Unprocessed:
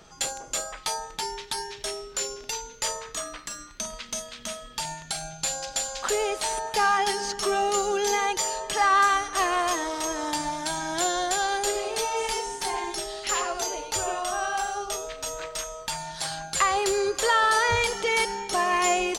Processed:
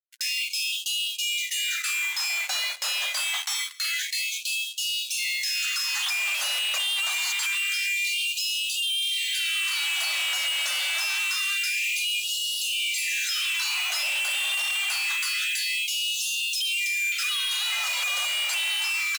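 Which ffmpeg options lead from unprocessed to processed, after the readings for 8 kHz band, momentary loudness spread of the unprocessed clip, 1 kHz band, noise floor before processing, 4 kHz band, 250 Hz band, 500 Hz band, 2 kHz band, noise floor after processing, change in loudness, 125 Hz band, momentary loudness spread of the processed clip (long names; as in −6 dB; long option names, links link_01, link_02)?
0.0 dB, 11 LU, −16.5 dB, −46 dBFS, +8.5 dB, below −40 dB, −24.5 dB, +4.0 dB, −34 dBFS, +2.0 dB, below −40 dB, 2 LU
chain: -filter_complex "[0:a]afftfilt=real='real(if(lt(b,920),b+92*(1-2*mod(floor(b/92),2)),b),0)':imag='imag(if(lt(b,920),b+92*(1-2*mod(floor(b/92),2)),b),0)':win_size=2048:overlap=0.75,agate=range=-33dB:threshold=-37dB:ratio=3:detection=peak,equalizer=frequency=260:width_type=o:width=0.45:gain=-11.5,alimiter=limit=-20.5dB:level=0:latency=1:release=494,acompressor=threshold=-41dB:ratio=3,asplit=2[link_01][link_02];[link_02]highpass=frequency=720:poles=1,volume=26dB,asoftclip=type=tanh:threshold=-23.5dB[link_03];[link_01][link_03]amix=inputs=2:normalize=0,lowpass=frequency=7500:poles=1,volume=-6dB,aeval=exprs='val(0)+0.000631*(sin(2*PI*60*n/s)+sin(2*PI*2*60*n/s)/2+sin(2*PI*3*60*n/s)/3+sin(2*PI*4*60*n/s)/4+sin(2*PI*5*60*n/s)/5)':channel_layout=same,aeval=exprs='0.0596*(cos(1*acos(clip(val(0)/0.0596,-1,1)))-cos(1*PI/2))+0.00133*(cos(7*acos(clip(val(0)/0.0596,-1,1)))-cos(7*PI/2))':channel_layout=same,volume=29dB,asoftclip=hard,volume=-29dB,acrusher=bits=5:mix=0:aa=0.5,aecho=1:1:136|272|408:0.0891|0.0339|0.0129,afftfilt=real='re*gte(b*sr/1024,480*pow(2600/480,0.5+0.5*sin(2*PI*0.26*pts/sr)))':imag='im*gte(b*sr/1024,480*pow(2600/480,0.5+0.5*sin(2*PI*0.26*pts/sr)))':win_size=1024:overlap=0.75,volume=4.5dB"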